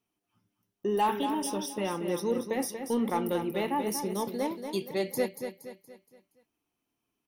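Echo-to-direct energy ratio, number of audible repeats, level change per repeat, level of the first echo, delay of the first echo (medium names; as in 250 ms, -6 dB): -7.0 dB, 4, -7.5 dB, -8.0 dB, 235 ms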